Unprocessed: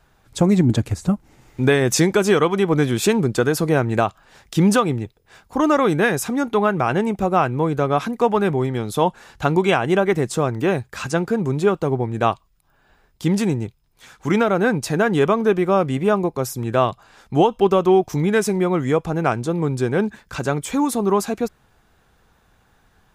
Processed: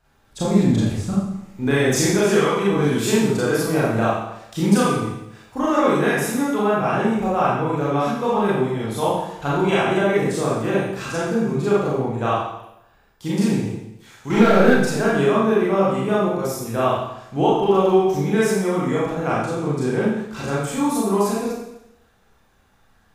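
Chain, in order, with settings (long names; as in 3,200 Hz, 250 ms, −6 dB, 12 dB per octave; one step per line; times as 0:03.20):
0:14.30–0:14.70: leveller curve on the samples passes 2
four-comb reverb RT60 0.84 s, combs from 28 ms, DRR −8 dB
level −9 dB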